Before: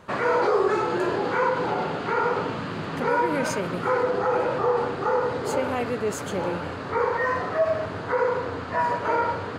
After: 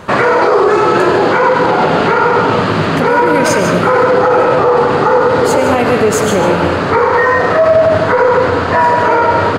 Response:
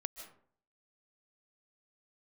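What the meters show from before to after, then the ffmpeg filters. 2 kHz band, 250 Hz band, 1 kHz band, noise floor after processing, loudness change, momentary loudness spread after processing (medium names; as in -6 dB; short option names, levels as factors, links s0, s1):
+14.5 dB, +15.0 dB, +14.5 dB, -14 dBFS, +14.5 dB, 2 LU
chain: -filter_complex "[0:a]asplit=2[s0][s1];[s1]adelay=93.29,volume=0.282,highshelf=f=4000:g=-2.1[s2];[s0][s2]amix=inputs=2:normalize=0[s3];[1:a]atrim=start_sample=2205[s4];[s3][s4]afir=irnorm=-1:irlink=0,alimiter=level_in=10.6:limit=0.891:release=50:level=0:latency=1,volume=0.891"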